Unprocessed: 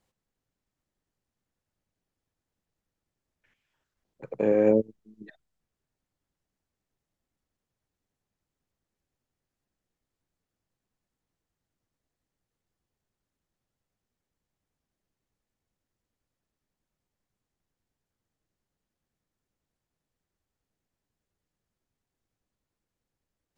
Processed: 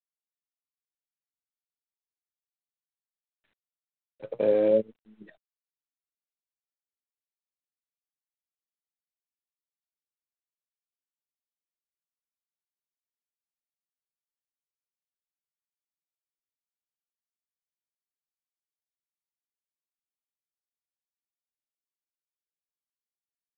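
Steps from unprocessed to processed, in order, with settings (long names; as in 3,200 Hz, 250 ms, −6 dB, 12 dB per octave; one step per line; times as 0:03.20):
parametric band 570 Hz +9.5 dB 0.51 octaves
brickwall limiter −10 dBFS, peak gain reduction 5 dB
flanger 0.4 Hz, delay 3.5 ms, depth 9.8 ms, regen +60%
G.726 24 kbit/s 8,000 Hz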